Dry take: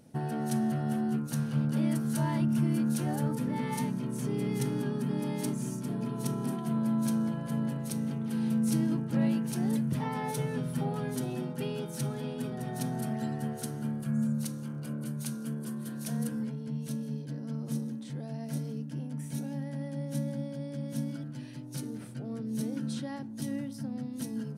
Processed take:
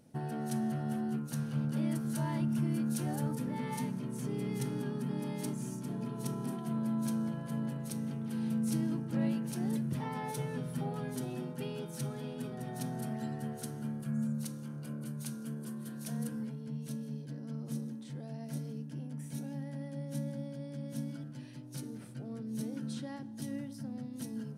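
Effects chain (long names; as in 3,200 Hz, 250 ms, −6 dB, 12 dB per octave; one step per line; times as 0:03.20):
0:02.91–0:03.42: bass and treble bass +1 dB, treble +3 dB
convolution reverb RT60 2.8 s, pre-delay 3 ms, DRR 17 dB
level −4.5 dB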